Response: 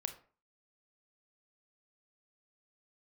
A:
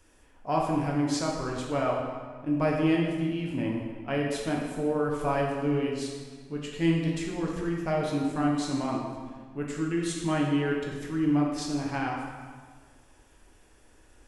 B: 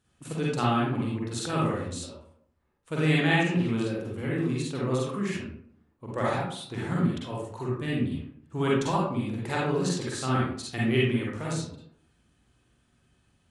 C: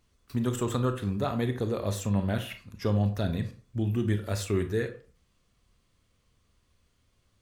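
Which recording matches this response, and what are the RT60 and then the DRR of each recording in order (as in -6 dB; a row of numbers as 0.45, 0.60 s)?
C; 1.6, 0.65, 0.40 s; -2.0, -5.5, 7.5 dB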